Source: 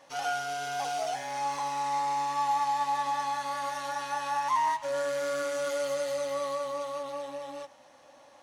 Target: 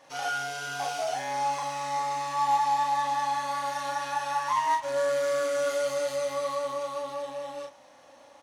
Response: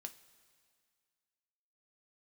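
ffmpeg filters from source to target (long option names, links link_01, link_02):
-filter_complex "[0:a]asplit=2[link_01][link_02];[link_02]adelay=37,volume=-2.5dB[link_03];[link_01][link_03]amix=inputs=2:normalize=0,asplit=2[link_04][link_05];[link_05]acrusher=bits=2:mix=0:aa=0.5,volume=-12dB[link_06];[link_04][link_06]amix=inputs=2:normalize=0"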